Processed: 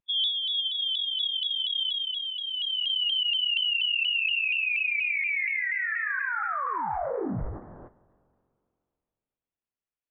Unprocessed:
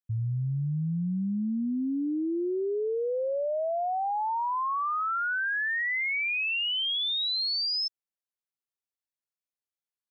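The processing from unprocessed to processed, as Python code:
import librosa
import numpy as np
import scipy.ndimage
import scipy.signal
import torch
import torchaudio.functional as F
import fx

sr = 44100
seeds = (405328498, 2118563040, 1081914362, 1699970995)

y = fx.peak_eq(x, sr, hz=340.0, db=-10.5, octaves=0.59)
y = fx.rider(y, sr, range_db=4, speed_s=0.5)
y = fx.rev_spring(y, sr, rt60_s=2.5, pass_ms=(31, 52), chirp_ms=20, drr_db=17.5)
y = fx.formant_shift(y, sr, semitones=-4)
y = fx.freq_invert(y, sr, carrier_hz=3400)
y = fx.vibrato_shape(y, sr, shape='saw_down', rate_hz=4.2, depth_cents=100.0)
y = y * 10.0 ** (2.5 / 20.0)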